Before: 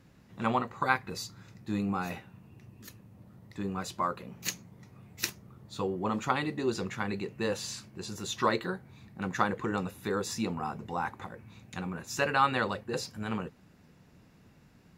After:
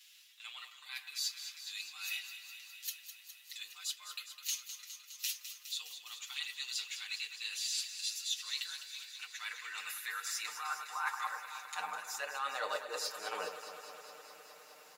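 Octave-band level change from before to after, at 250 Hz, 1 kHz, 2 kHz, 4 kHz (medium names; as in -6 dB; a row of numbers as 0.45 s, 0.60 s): under -30 dB, -10.5 dB, -5.5 dB, +3.0 dB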